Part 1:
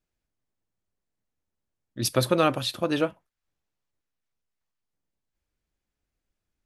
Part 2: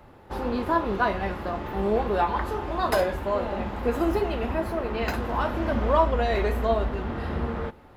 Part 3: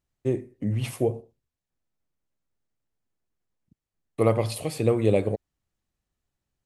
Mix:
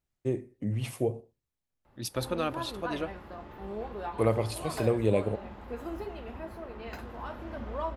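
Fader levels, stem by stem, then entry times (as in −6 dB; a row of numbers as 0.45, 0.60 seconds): −9.5, −13.5, −4.5 decibels; 0.00, 1.85, 0.00 seconds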